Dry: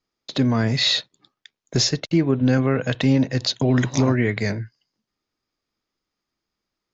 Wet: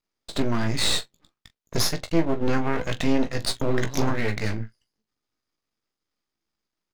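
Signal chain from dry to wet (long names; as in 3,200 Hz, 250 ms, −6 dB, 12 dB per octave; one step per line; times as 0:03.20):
half-wave rectification
ambience of single reflections 18 ms −8 dB, 42 ms −16 dB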